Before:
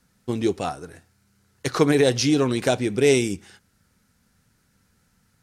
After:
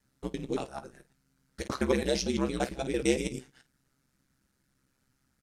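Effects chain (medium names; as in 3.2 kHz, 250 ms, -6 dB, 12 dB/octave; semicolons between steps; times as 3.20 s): time reversed locally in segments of 113 ms; early reflections 15 ms -10 dB, 50 ms -14.5 dB; ring modulator 66 Hz; trim -7 dB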